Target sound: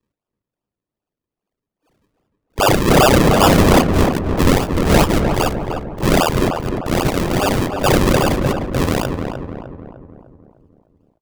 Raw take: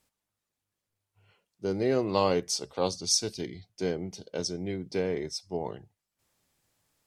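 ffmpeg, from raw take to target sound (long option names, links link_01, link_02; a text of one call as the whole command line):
ffmpeg -i in.wav -filter_complex "[0:a]afftfilt=real='real(if(lt(b,272),68*(eq(floor(b/68),0)*1+eq(floor(b/68),1)*2+eq(floor(b/68),2)*3+eq(floor(b/68),3)*0)+mod(b,68),b),0)':imag='imag(if(lt(b,272),68*(eq(floor(b/68),0)*1+eq(floor(b/68),1)*2+eq(floor(b/68),2)*3+eq(floor(b/68),3)*0)+mod(b,68),b),0)':win_size=2048:overlap=0.75,afwtdn=0.0112,highshelf=frequency=5400:gain=-10,aexciter=amount=8.5:drive=5:freq=2500,aresample=16000,volume=2.5dB,asoftclip=hard,volume=-2.5dB,aresample=44100,atempo=0.63,lowshelf=frequency=210:gain=7,acrusher=samples=42:mix=1:aa=0.000001:lfo=1:lforange=42:lforate=2.5,asoftclip=type=tanh:threshold=-6dB,asplit=2[link_01][link_02];[link_02]adelay=303,lowpass=frequency=1500:poles=1,volume=-5dB,asplit=2[link_03][link_04];[link_04]adelay=303,lowpass=frequency=1500:poles=1,volume=0.53,asplit=2[link_05][link_06];[link_06]adelay=303,lowpass=frequency=1500:poles=1,volume=0.53,asplit=2[link_07][link_08];[link_08]adelay=303,lowpass=frequency=1500:poles=1,volume=0.53,asplit=2[link_09][link_10];[link_10]adelay=303,lowpass=frequency=1500:poles=1,volume=0.53,asplit=2[link_11][link_12];[link_12]adelay=303,lowpass=frequency=1500:poles=1,volume=0.53,asplit=2[link_13][link_14];[link_14]adelay=303,lowpass=frequency=1500:poles=1,volume=0.53[link_15];[link_03][link_05][link_07][link_09][link_11][link_13][link_15]amix=inputs=7:normalize=0[link_16];[link_01][link_16]amix=inputs=2:normalize=0,volume=1.5dB" out.wav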